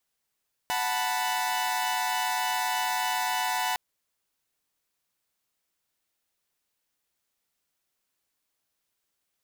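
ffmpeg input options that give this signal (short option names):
-f lavfi -i "aevalsrc='0.0398*((2*mod(739.99*t,1)-1)+(2*mod(880*t,1)-1)+(2*mod(987.77*t,1)-1))':d=3.06:s=44100"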